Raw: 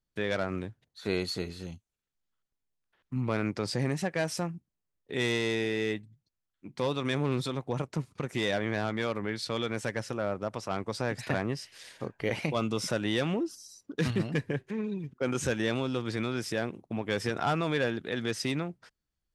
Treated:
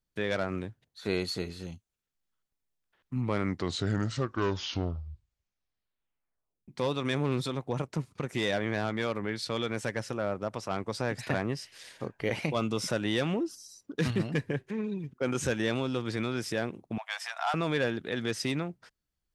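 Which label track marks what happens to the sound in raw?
3.140000	3.140000	tape stop 3.54 s
16.980000	17.540000	Chebyshev high-pass filter 660 Hz, order 6

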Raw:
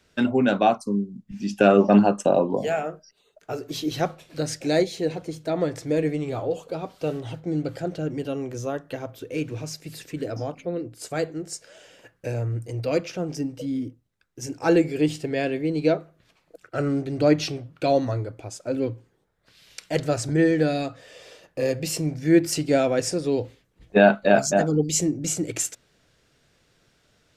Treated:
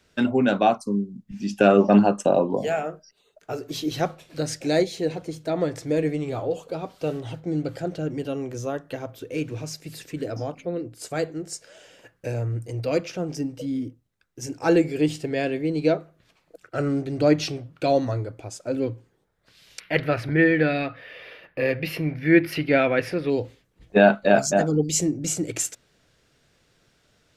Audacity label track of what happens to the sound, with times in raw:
19.800000	23.300000	drawn EQ curve 760 Hz 0 dB, 2,200 Hz +11 dB, 4,700 Hz −6 dB, 7,700 Hz −27 dB, 11,000 Hz −4 dB

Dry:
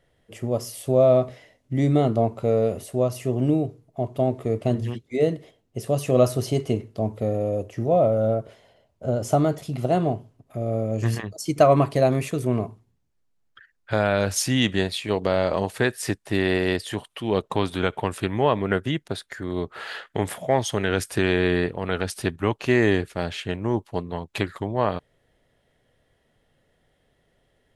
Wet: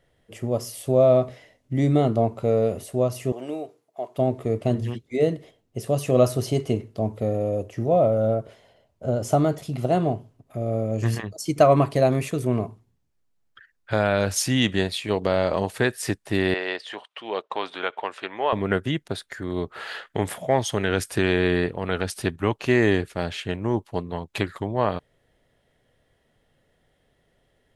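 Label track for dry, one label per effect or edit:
3.320000	4.180000	high-pass filter 570 Hz
16.540000	18.530000	band-pass filter 580–3,900 Hz

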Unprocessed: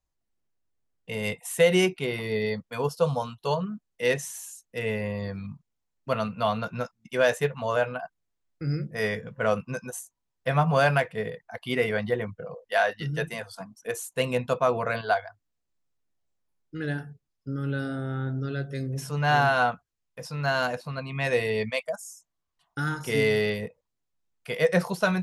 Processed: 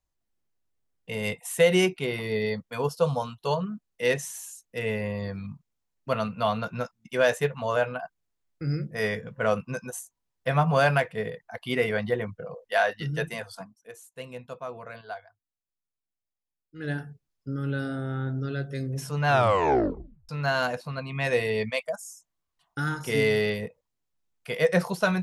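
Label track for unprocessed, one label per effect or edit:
13.580000	16.910000	duck −13.5 dB, fades 0.18 s
19.270000	19.270000	tape stop 1.02 s

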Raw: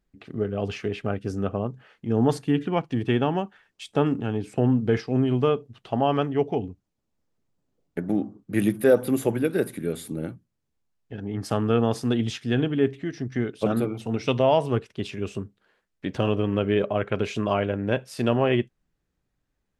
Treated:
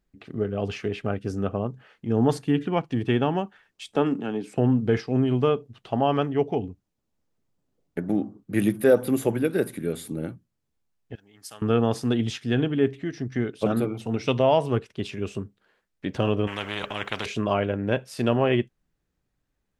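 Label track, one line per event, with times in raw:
3.960000	4.570000	high-pass filter 170 Hz 24 dB per octave
11.150000	11.620000	first-order pre-emphasis coefficient 0.97
16.470000	17.260000	every bin compressed towards the loudest bin 4 to 1

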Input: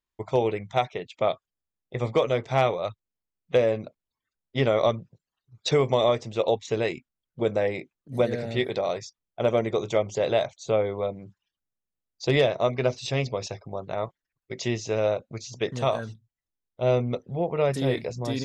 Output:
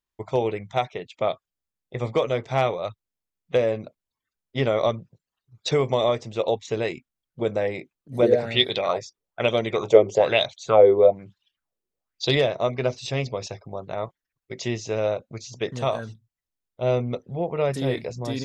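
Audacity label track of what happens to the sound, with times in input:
8.220000	12.350000	auto-filter bell 1.1 Hz 360–4,000 Hz +17 dB

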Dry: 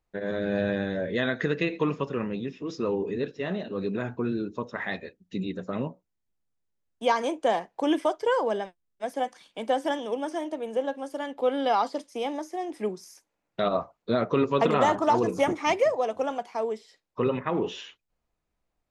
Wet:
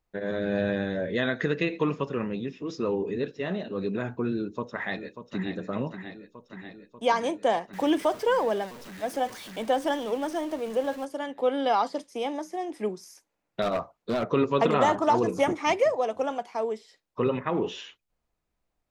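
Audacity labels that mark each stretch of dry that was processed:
4.370000	5.540000	delay throw 590 ms, feedback 75%, level −10 dB
7.730000	11.050000	converter with a step at zero of −39 dBFS
13.620000	14.320000	gain into a clipping stage and back gain 22.5 dB

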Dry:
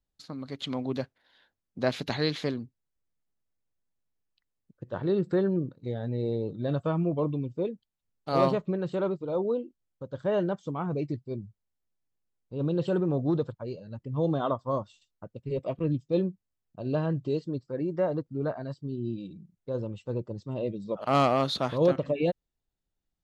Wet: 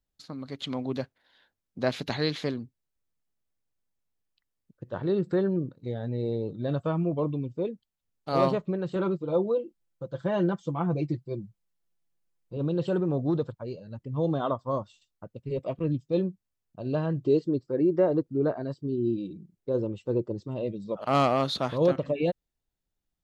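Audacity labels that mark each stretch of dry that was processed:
8.950000	12.570000	comb filter 5.9 ms, depth 77%
17.180000	20.480000	parametric band 360 Hz +9 dB 0.95 octaves

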